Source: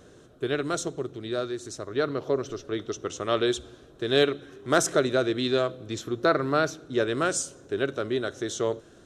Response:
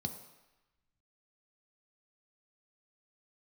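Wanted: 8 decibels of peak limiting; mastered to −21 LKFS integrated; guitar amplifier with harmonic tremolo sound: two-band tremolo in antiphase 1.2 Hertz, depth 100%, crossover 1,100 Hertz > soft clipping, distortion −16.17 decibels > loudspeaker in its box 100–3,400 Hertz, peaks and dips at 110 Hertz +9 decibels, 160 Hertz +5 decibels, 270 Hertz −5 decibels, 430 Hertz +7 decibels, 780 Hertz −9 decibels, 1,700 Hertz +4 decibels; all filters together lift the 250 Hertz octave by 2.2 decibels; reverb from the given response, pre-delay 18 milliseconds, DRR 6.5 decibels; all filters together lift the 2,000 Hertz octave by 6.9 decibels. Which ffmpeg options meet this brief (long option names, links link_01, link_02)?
-filter_complex "[0:a]equalizer=frequency=250:width_type=o:gain=3.5,equalizer=frequency=2000:width_type=o:gain=7,alimiter=limit=-13.5dB:level=0:latency=1,asplit=2[link_01][link_02];[1:a]atrim=start_sample=2205,adelay=18[link_03];[link_02][link_03]afir=irnorm=-1:irlink=0,volume=-6.5dB[link_04];[link_01][link_04]amix=inputs=2:normalize=0,acrossover=split=1100[link_05][link_06];[link_05]aeval=exprs='val(0)*(1-1/2+1/2*cos(2*PI*1.2*n/s))':channel_layout=same[link_07];[link_06]aeval=exprs='val(0)*(1-1/2-1/2*cos(2*PI*1.2*n/s))':channel_layout=same[link_08];[link_07][link_08]amix=inputs=2:normalize=0,asoftclip=threshold=-20dB,highpass=100,equalizer=frequency=110:width_type=q:width=4:gain=9,equalizer=frequency=160:width_type=q:width=4:gain=5,equalizer=frequency=270:width_type=q:width=4:gain=-5,equalizer=frequency=430:width_type=q:width=4:gain=7,equalizer=frequency=780:width_type=q:width=4:gain=-9,equalizer=frequency=1700:width_type=q:width=4:gain=4,lowpass=frequency=3400:width=0.5412,lowpass=frequency=3400:width=1.3066,volume=9.5dB"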